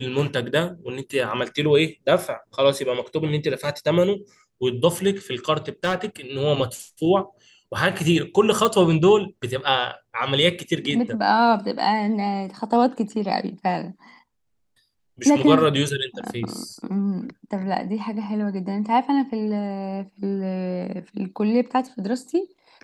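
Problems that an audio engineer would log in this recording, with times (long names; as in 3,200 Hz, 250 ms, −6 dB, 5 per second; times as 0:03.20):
0:05.68–0:06.06: clipping −17.5 dBFS
0:08.65: click −7 dBFS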